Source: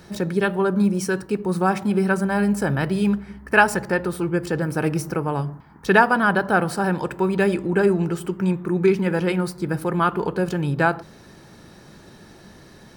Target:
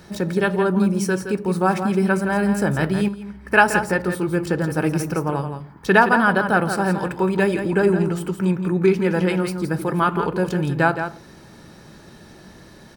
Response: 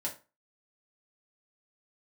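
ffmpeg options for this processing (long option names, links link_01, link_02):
-filter_complex "[0:a]aecho=1:1:168:0.376,asplit=2[link_01][link_02];[1:a]atrim=start_sample=2205[link_03];[link_02][link_03]afir=irnorm=-1:irlink=0,volume=-17dB[link_04];[link_01][link_04]amix=inputs=2:normalize=0,asettb=1/sr,asplit=3[link_05][link_06][link_07];[link_05]atrim=end=3.084[link_08];[link_06]atrim=start=3.08:end=3.51,asetpts=PTS-STARTPTS,afade=type=in:duration=0.004:curve=qsin,afade=type=out:start_time=0.426:duration=0.004:curve=qsin,acompressor=threshold=-32dB:ratio=2.5[link_09];[link_07]atrim=start=3.506[link_10];[link_08][link_09]acrossfade=duration=0.004:curve1=hsin:curve2=qsin[link_11];[link_11][link_10]acrossfade=duration=0.004:curve1=qsin:curve2=hsin"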